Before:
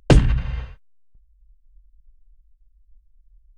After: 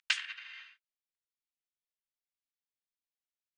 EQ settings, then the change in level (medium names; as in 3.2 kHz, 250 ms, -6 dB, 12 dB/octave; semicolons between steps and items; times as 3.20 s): inverse Chebyshev high-pass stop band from 400 Hz, stop band 70 dB; distance through air 97 m; 0.0 dB